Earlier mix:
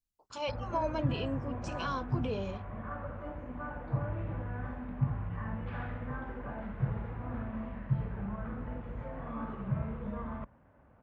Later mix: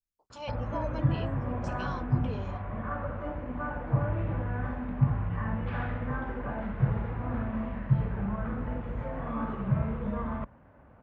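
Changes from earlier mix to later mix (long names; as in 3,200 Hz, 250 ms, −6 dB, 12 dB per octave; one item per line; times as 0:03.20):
speech −4.5 dB
background +6.0 dB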